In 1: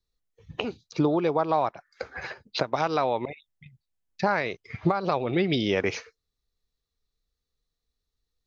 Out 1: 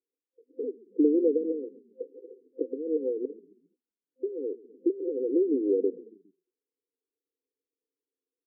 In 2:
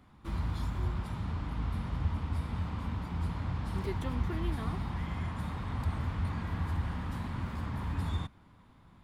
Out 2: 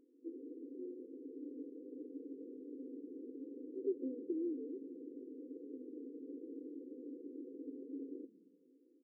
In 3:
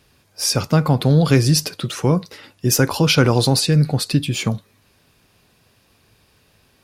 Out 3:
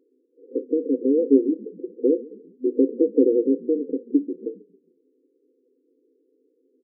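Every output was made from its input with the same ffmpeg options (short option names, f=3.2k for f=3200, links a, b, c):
-filter_complex "[0:a]acrusher=bits=4:mode=log:mix=0:aa=0.000001,afftfilt=real='re*between(b*sr/4096,250,520)':imag='im*between(b*sr/4096,250,520)':win_size=4096:overlap=0.75,asplit=4[a][b][c][d];[b]adelay=136,afreqshift=-30,volume=-21dB[e];[c]adelay=272,afreqshift=-60,volume=-28.1dB[f];[d]adelay=408,afreqshift=-90,volume=-35.3dB[g];[a][e][f][g]amix=inputs=4:normalize=0,volume=2dB"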